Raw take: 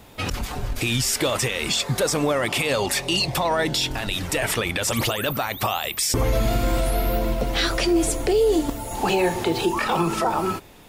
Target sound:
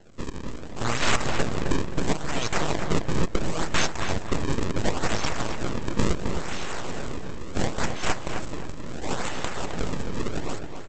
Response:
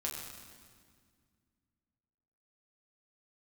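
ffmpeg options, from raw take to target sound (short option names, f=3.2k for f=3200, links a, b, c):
-filter_complex "[0:a]highpass=930,tiltshelf=f=1.2k:g=-4.5,acrusher=samples=36:mix=1:aa=0.000001:lfo=1:lforange=57.6:lforate=0.72,aresample=16000,aeval=exprs='abs(val(0))':c=same,aresample=44100,asplit=2[a][b];[b]adelay=263,lowpass=f=3.1k:p=1,volume=-6dB,asplit=2[c][d];[d]adelay=263,lowpass=f=3.1k:p=1,volume=0.33,asplit=2[e][f];[f]adelay=263,lowpass=f=3.1k:p=1,volume=0.33,asplit=2[g][h];[h]adelay=263,lowpass=f=3.1k:p=1,volume=0.33[i];[a][c][e][g][i]amix=inputs=5:normalize=0"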